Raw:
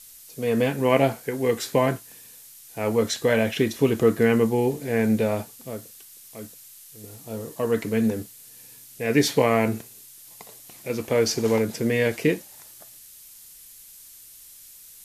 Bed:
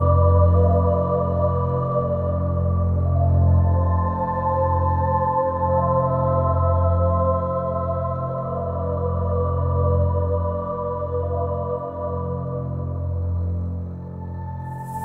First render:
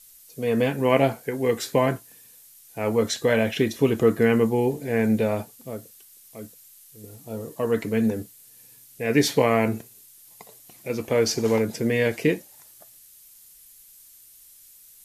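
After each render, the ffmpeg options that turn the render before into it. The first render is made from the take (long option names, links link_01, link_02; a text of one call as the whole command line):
ffmpeg -i in.wav -af "afftdn=noise_reduction=6:noise_floor=-47" out.wav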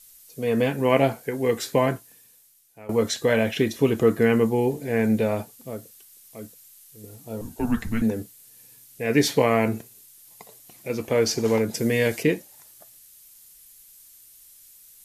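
ffmpeg -i in.wav -filter_complex "[0:a]asettb=1/sr,asplit=3[link_01][link_02][link_03];[link_01]atrim=end=7.414[link_04];[link_02]atrim=start=7.41:end=8.02,asetpts=PTS-STARTPTS,afade=type=in:duration=0.004:curve=qsin,afade=type=out:start_time=0.606:duration=0.004:curve=qsin,afreqshift=-220[link_05];[link_03]atrim=start=8.016[link_06];[link_04][link_05]acrossfade=duration=0.004:curve1=hsin:curve2=qsin[link_07];[link_07][link_06]acrossfade=duration=0.004:curve1=qsin:curve2=hsin,asettb=1/sr,asplit=3[link_08][link_09][link_10];[link_08]atrim=end=11.744[link_11];[link_09]atrim=start=11.74:end=12.23,asetpts=PTS-STARTPTS,afade=type=in:duration=0.004:curve=qsin,afade=type=out:start_time=0.486:duration=0.004:curve=qsin,bass=frequency=250:gain=1,treble=frequency=4000:gain=7[link_12];[link_10]atrim=start=12.226[link_13];[link_11][link_12]acrossfade=duration=0.004:curve1=hsin:curve2=qsin[link_14];[link_14][link_13]acrossfade=duration=0.004:curve1=qsin:curve2=hsin,asplit=2[link_15][link_16];[link_15]atrim=end=2.89,asetpts=PTS-STARTPTS,afade=type=out:start_time=1.83:duration=1.06:silence=0.105925[link_17];[link_16]atrim=start=2.89,asetpts=PTS-STARTPTS,afade=type=in:duration=0.004:curve=hsin:silence=0.105925[link_18];[link_17][link_18]concat=n=2:v=0:a=1" out.wav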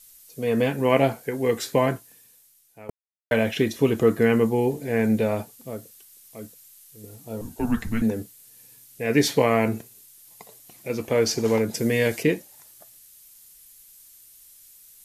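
ffmpeg -i in.wav -filter_complex "[0:a]asplit=3[link_01][link_02][link_03];[link_01]atrim=end=2.9,asetpts=PTS-STARTPTS,afade=type=out:start_time=2.896:duration=0.004:curve=hsin[link_04];[link_02]atrim=start=2.9:end=3.31,asetpts=PTS-STARTPTS,volume=0[link_05];[link_03]atrim=start=3.31,asetpts=PTS-STARTPTS,afade=type=in:duration=0.004:curve=hsin[link_06];[link_04][link_05][link_06]concat=n=3:v=0:a=1" out.wav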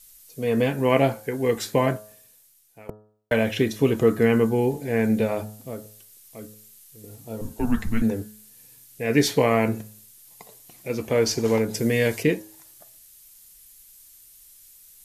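ffmpeg -i in.wav -af "lowshelf=frequency=67:gain=7.5,bandreject=frequency=106.5:width_type=h:width=4,bandreject=frequency=213:width_type=h:width=4,bandreject=frequency=319.5:width_type=h:width=4,bandreject=frequency=426:width_type=h:width=4,bandreject=frequency=532.5:width_type=h:width=4,bandreject=frequency=639:width_type=h:width=4,bandreject=frequency=745.5:width_type=h:width=4,bandreject=frequency=852:width_type=h:width=4,bandreject=frequency=958.5:width_type=h:width=4,bandreject=frequency=1065:width_type=h:width=4,bandreject=frequency=1171.5:width_type=h:width=4,bandreject=frequency=1278:width_type=h:width=4,bandreject=frequency=1384.5:width_type=h:width=4,bandreject=frequency=1491:width_type=h:width=4,bandreject=frequency=1597.5:width_type=h:width=4,bandreject=frequency=1704:width_type=h:width=4" out.wav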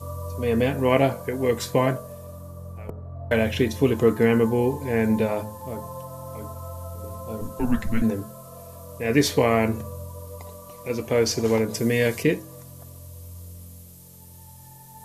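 ffmpeg -i in.wav -i bed.wav -filter_complex "[1:a]volume=-17.5dB[link_01];[0:a][link_01]amix=inputs=2:normalize=0" out.wav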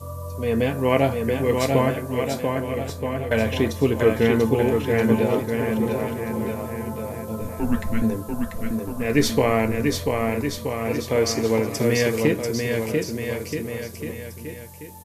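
ffmpeg -i in.wav -af "aecho=1:1:690|1276|1775|2199|2559:0.631|0.398|0.251|0.158|0.1" out.wav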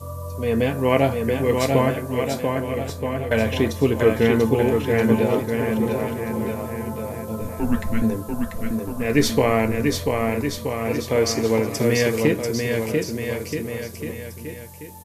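ffmpeg -i in.wav -af "volume=1dB" out.wav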